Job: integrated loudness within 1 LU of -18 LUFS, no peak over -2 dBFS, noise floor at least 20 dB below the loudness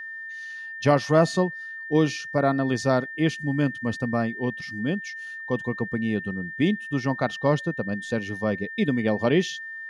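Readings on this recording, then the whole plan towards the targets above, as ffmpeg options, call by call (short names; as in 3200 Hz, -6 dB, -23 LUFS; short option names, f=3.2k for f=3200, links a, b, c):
steady tone 1800 Hz; tone level -34 dBFS; loudness -25.5 LUFS; peak -7.5 dBFS; loudness target -18.0 LUFS
-> -af "bandreject=f=1.8k:w=30"
-af "volume=7.5dB,alimiter=limit=-2dB:level=0:latency=1"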